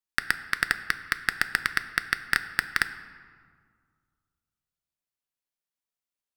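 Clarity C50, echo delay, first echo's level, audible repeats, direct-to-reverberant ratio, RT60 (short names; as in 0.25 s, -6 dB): 13.0 dB, none, none, none, 9.5 dB, 2.0 s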